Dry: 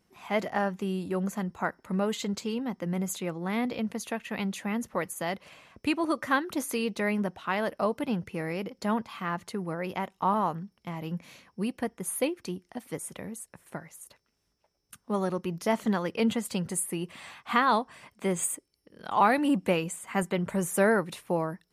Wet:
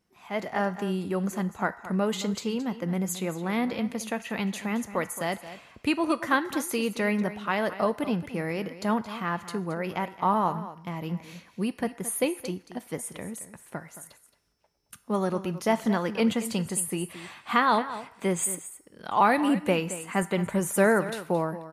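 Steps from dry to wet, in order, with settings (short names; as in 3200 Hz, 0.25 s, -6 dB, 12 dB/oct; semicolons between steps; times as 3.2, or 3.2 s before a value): echo 0.221 s -14 dB; AGC gain up to 7 dB; on a send at -11 dB: HPF 990 Hz 12 dB/oct + reverb RT60 1.0 s, pre-delay 4 ms; on the sum: gain -5 dB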